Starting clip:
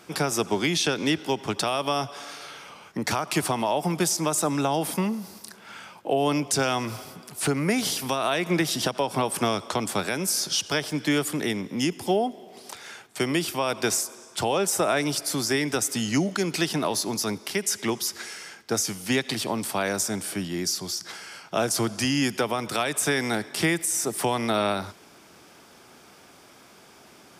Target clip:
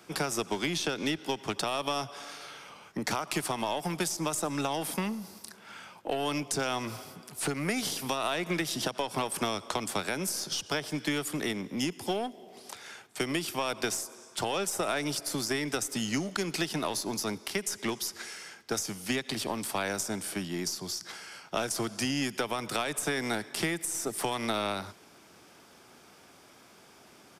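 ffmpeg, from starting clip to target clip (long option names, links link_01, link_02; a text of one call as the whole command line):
ffmpeg -i in.wav -filter_complex "[0:a]aeval=exprs='0.237*(cos(1*acos(clip(val(0)/0.237,-1,1)))-cos(1*PI/2))+0.0266*(cos(3*acos(clip(val(0)/0.237,-1,1)))-cos(3*PI/2))+0.0075*(cos(4*acos(clip(val(0)/0.237,-1,1)))-cos(4*PI/2))+0.0106*(cos(5*acos(clip(val(0)/0.237,-1,1)))-cos(5*PI/2))+0.00944*(cos(7*acos(clip(val(0)/0.237,-1,1)))-cos(7*PI/2))':channel_layout=same,aresample=32000,aresample=44100,acrossover=split=120|1300[link_01][link_02][link_03];[link_01]acompressor=threshold=-50dB:ratio=4[link_04];[link_02]acompressor=threshold=-30dB:ratio=4[link_05];[link_03]acompressor=threshold=-31dB:ratio=4[link_06];[link_04][link_05][link_06]amix=inputs=3:normalize=0" out.wav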